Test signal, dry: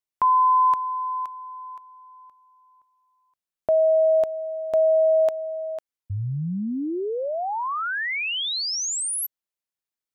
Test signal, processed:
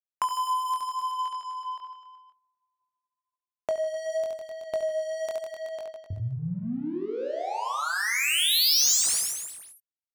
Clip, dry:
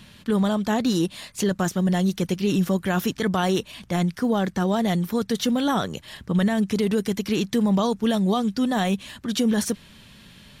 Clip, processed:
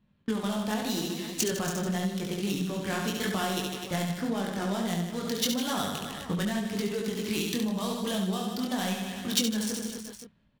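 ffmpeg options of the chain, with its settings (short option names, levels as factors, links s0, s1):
-af "agate=range=0.112:threshold=0.0112:ratio=16:release=354:detection=peak,adynamicsmooth=sensitivity=6.5:basefreq=1000,flanger=delay=19.5:depth=5.1:speed=0.87,aecho=1:1:70|154|254.8|375.8|520.9:0.631|0.398|0.251|0.158|0.1,acompressor=threshold=0.0316:ratio=6:attack=36:release=614:knee=6:detection=rms,crystalizer=i=4:c=0,volume=1.26"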